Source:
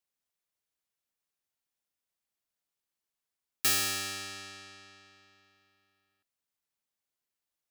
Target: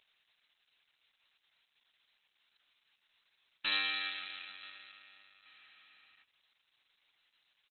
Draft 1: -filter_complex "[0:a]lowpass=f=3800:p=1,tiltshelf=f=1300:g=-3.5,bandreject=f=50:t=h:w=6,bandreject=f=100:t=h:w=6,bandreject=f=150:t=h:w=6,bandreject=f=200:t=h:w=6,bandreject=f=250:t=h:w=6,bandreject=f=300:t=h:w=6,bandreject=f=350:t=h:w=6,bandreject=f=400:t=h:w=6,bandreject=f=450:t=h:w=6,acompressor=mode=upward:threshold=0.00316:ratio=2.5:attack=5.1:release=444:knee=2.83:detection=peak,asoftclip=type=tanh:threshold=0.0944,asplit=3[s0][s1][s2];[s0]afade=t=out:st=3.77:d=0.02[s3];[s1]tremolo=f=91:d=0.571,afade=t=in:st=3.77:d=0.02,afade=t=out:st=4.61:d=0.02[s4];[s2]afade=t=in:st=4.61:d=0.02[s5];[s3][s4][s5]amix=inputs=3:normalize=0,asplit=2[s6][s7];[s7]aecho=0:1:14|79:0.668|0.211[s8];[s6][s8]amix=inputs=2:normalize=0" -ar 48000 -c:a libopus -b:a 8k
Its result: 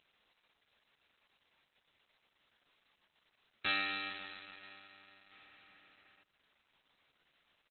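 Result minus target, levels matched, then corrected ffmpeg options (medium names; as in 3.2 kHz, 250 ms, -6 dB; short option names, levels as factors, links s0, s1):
1 kHz band +4.5 dB
-filter_complex "[0:a]lowpass=f=3800:p=1,tiltshelf=f=1300:g=-13.5,bandreject=f=50:t=h:w=6,bandreject=f=100:t=h:w=6,bandreject=f=150:t=h:w=6,bandreject=f=200:t=h:w=6,bandreject=f=250:t=h:w=6,bandreject=f=300:t=h:w=6,bandreject=f=350:t=h:w=6,bandreject=f=400:t=h:w=6,bandreject=f=450:t=h:w=6,acompressor=mode=upward:threshold=0.00316:ratio=2.5:attack=5.1:release=444:knee=2.83:detection=peak,asoftclip=type=tanh:threshold=0.0944,asplit=3[s0][s1][s2];[s0]afade=t=out:st=3.77:d=0.02[s3];[s1]tremolo=f=91:d=0.571,afade=t=in:st=3.77:d=0.02,afade=t=out:st=4.61:d=0.02[s4];[s2]afade=t=in:st=4.61:d=0.02[s5];[s3][s4][s5]amix=inputs=3:normalize=0,asplit=2[s6][s7];[s7]aecho=0:1:14|79:0.668|0.211[s8];[s6][s8]amix=inputs=2:normalize=0" -ar 48000 -c:a libopus -b:a 8k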